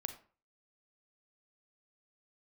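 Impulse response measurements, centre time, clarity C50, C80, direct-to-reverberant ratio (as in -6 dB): 10 ms, 11.0 dB, 15.0 dB, 7.5 dB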